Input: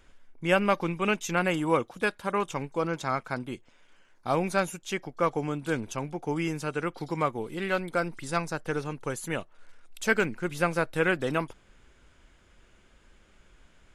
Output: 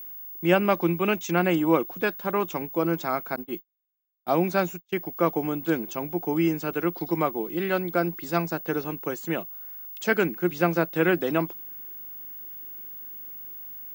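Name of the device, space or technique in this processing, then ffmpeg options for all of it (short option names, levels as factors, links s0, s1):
old television with a line whistle: -filter_complex "[0:a]highpass=f=170:w=0.5412,highpass=f=170:w=1.3066,equalizer=f=170:t=q:w=4:g=8,equalizer=f=340:t=q:w=4:g=9,equalizer=f=690:t=q:w=4:g=5,lowpass=f=7200:w=0.5412,lowpass=f=7200:w=1.3066,aeval=exprs='val(0)+0.0141*sin(2*PI*15625*n/s)':c=same,asettb=1/sr,asplit=3[s0][s1][s2];[s0]atrim=end=3.364[s3];[s1]atrim=start=3.36:end=5.06,asetpts=PTS-STARTPTS,afade=t=in:d=0.004:c=qsin,afade=t=out:st=1.696:d=0.004:c=qsin,agate=range=0.00794:threshold=0.0251:ratio=16:detection=peak[s4];[s2]atrim=start=5.056[s5];[s3][s4]acrossfade=d=0.004:c1=hsin:c2=qsin[s6];[s6][s5]acrossfade=d=0.004:c1=qsin:c2=hsin"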